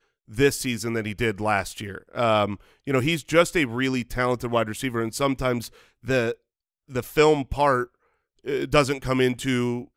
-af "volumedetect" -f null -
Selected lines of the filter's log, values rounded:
mean_volume: -24.5 dB
max_volume: -3.8 dB